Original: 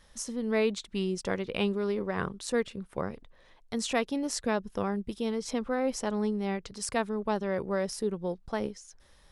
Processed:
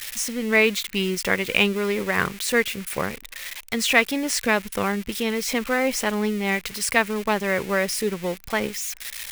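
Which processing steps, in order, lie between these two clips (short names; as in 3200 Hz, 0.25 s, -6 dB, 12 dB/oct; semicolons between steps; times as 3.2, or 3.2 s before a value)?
switching spikes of -31 dBFS; bell 2200 Hz +13.5 dB 1.2 oct; gain +5 dB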